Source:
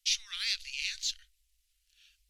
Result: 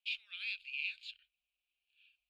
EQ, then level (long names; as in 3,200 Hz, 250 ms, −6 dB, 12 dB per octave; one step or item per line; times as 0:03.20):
formant filter a
phaser with its sweep stopped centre 2,600 Hz, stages 4
+10.5 dB